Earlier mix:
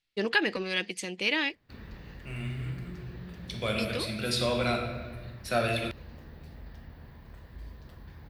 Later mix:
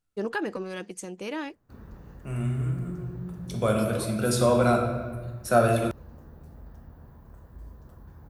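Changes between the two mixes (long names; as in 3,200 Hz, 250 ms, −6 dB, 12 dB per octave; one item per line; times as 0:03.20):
second voice +8.0 dB
master: add flat-topped bell 3,000 Hz −14.5 dB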